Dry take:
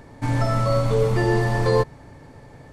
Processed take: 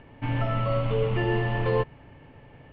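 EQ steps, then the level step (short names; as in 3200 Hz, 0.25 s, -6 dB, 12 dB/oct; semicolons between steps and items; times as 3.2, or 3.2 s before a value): synth low-pass 2900 Hz, resonance Q 7.3; air absorption 350 m; -5.0 dB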